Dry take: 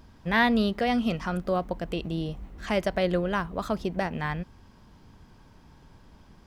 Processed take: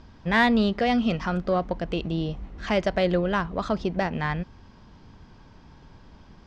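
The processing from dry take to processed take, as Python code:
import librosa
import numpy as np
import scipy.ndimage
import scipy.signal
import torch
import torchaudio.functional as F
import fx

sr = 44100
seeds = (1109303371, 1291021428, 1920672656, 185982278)

p1 = scipy.signal.sosfilt(scipy.signal.butter(4, 6100.0, 'lowpass', fs=sr, output='sos'), x)
p2 = 10.0 ** (-22.5 / 20.0) * np.tanh(p1 / 10.0 ** (-22.5 / 20.0))
y = p1 + (p2 * librosa.db_to_amplitude(-6.0))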